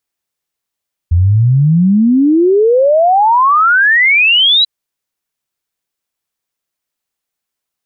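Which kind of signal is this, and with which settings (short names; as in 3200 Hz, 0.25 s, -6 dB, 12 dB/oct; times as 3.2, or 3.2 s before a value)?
log sweep 82 Hz -> 4000 Hz 3.54 s -6 dBFS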